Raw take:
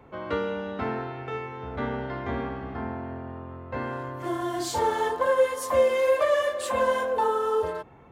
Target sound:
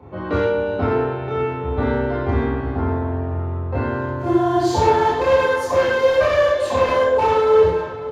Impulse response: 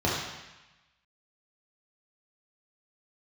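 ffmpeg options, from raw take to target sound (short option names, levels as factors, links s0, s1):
-filter_complex "[0:a]aeval=exprs='0.1*(abs(mod(val(0)/0.1+3,4)-2)-1)':c=same,asplit=2[s0][s1];[s1]adelay=550,lowpass=f=4600:p=1,volume=0.211,asplit=2[s2][s3];[s3]adelay=550,lowpass=f=4600:p=1,volume=0.37,asplit=2[s4][s5];[s5]adelay=550,lowpass=f=4600:p=1,volume=0.37,asplit=2[s6][s7];[s7]adelay=550,lowpass=f=4600:p=1,volume=0.37[s8];[s0][s2][s4][s6][s8]amix=inputs=5:normalize=0[s9];[1:a]atrim=start_sample=2205,atrim=end_sample=6615[s10];[s9][s10]afir=irnorm=-1:irlink=0,volume=0.531"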